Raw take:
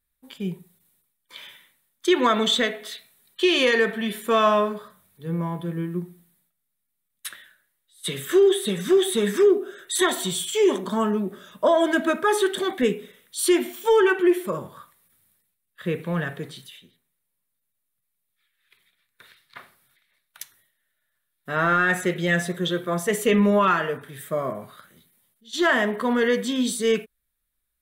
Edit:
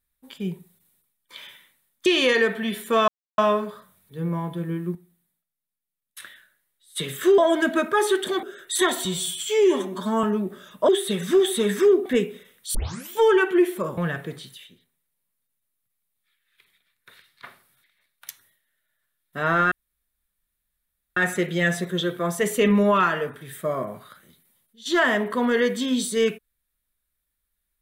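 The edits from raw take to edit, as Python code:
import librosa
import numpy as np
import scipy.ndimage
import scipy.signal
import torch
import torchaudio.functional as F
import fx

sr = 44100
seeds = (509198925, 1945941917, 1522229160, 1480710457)

y = fx.edit(x, sr, fx.cut(start_s=2.06, length_s=1.38),
    fx.insert_silence(at_s=4.46, length_s=0.3),
    fx.clip_gain(start_s=6.03, length_s=1.25, db=-8.5),
    fx.swap(start_s=8.46, length_s=1.17, other_s=11.69, other_length_s=1.05),
    fx.stretch_span(start_s=10.25, length_s=0.79, factor=1.5),
    fx.tape_start(start_s=13.43, length_s=0.36),
    fx.cut(start_s=14.66, length_s=1.44),
    fx.insert_room_tone(at_s=21.84, length_s=1.45), tone=tone)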